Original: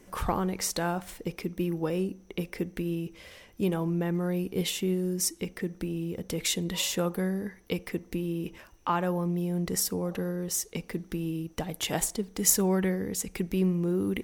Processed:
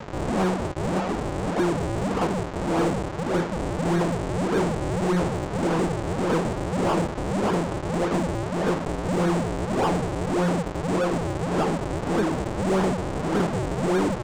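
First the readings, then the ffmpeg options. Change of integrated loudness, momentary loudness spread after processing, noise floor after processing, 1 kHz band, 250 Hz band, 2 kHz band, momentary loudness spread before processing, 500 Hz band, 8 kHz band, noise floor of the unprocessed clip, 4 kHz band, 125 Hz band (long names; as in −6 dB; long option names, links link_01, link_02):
+5.0 dB, 3 LU, −31 dBFS, +10.0 dB, +5.0 dB, +7.0 dB, 9 LU, +7.5 dB, −9.0 dB, −56 dBFS, −2.0 dB, +5.5 dB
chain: -filter_complex "[0:a]asplit=2[link_01][link_02];[link_02]adelay=964,lowpass=frequency=3100:poles=1,volume=-4.5dB,asplit=2[link_03][link_04];[link_04]adelay=964,lowpass=frequency=3100:poles=1,volume=0.46,asplit=2[link_05][link_06];[link_06]adelay=964,lowpass=frequency=3100:poles=1,volume=0.46,asplit=2[link_07][link_08];[link_08]adelay=964,lowpass=frequency=3100:poles=1,volume=0.46,asplit=2[link_09][link_10];[link_10]adelay=964,lowpass=frequency=3100:poles=1,volume=0.46,asplit=2[link_11][link_12];[link_12]adelay=964,lowpass=frequency=3100:poles=1,volume=0.46[link_13];[link_01][link_03][link_05][link_07][link_09][link_11][link_13]amix=inputs=7:normalize=0,aresample=16000,acrusher=samples=40:mix=1:aa=0.000001:lfo=1:lforange=64:lforate=1.7,aresample=44100,acompressor=threshold=-34dB:ratio=3,asplit=2[link_14][link_15];[link_15]highpass=frequency=720:poles=1,volume=36dB,asoftclip=type=tanh:threshold=-18dB[link_16];[link_14][link_16]amix=inputs=2:normalize=0,lowpass=frequency=1300:poles=1,volume=-6dB,volume=5dB"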